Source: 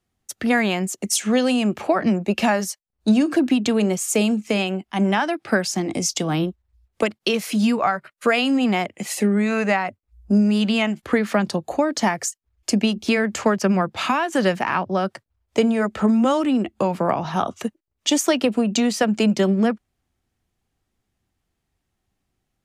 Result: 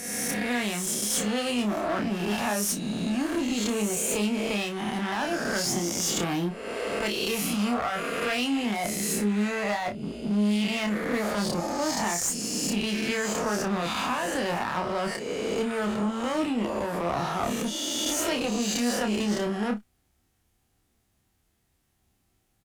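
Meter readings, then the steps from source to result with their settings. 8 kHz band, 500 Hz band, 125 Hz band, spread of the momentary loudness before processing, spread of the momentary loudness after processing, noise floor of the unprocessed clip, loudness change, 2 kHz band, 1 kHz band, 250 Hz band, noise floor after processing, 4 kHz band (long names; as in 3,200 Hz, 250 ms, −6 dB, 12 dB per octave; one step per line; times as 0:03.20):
−0.5 dB, −7.0 dB, −7.0 dB, 7 LU, 3 LU, −78 dBFS, −6.5 dB, −5.5 dB, −6.0 dB, −8.0 dB, −71 dBFS, −3.0 dB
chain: peak hold with a rise ahead of every peak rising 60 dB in 1.02 s
high-shelf EQ 7,900 Hz +9 dB
reversed playback
downward compressor 6 to 1, threshold −24 dBFS, peak gain reduction 13.5 dB
reversed playback
asymmetric clip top −28.5 dBFS
harmonic generator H 6 −28 dB, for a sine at −13 dBFS
ambience of single reflections 29 ms −5.5 dB, 58 ms −17.5 dB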